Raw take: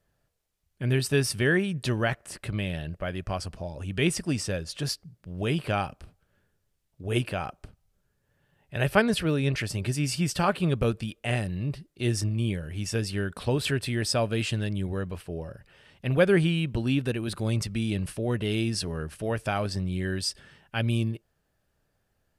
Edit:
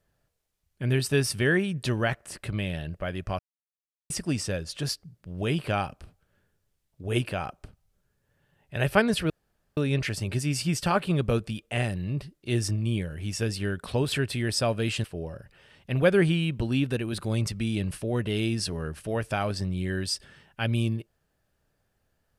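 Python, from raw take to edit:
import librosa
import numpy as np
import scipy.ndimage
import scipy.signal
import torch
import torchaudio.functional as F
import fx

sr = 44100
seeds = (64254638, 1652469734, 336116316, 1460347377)

y = fx.edit(x, sr, fx.silence(start_s=3.39, length_s=0.71),
    fx.insert_room_tone(at_s=9.3, length_s=0.47),
    fx.cut(start_s=14.57, length_s=0.62), tone=tone)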